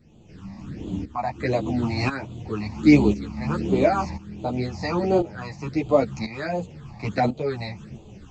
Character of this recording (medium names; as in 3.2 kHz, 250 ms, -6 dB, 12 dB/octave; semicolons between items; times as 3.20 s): phasing stages 8, 1.4 Hz, lowest notch 410–1700 Hz; tremolo saw up 0.96 Hz, depth 80%; a shimmering, thickened sound